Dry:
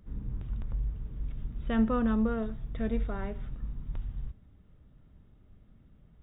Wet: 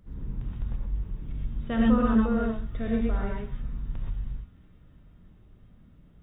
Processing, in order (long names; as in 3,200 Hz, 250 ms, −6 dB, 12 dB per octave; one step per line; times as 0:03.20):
on a send: delay with a high-pass on its return 343 ms, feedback 70%, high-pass 2,300 Hz, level −19 dB
on the sum: reverb whose tail is shaped and stops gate 150 ms rising, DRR −2.5 dB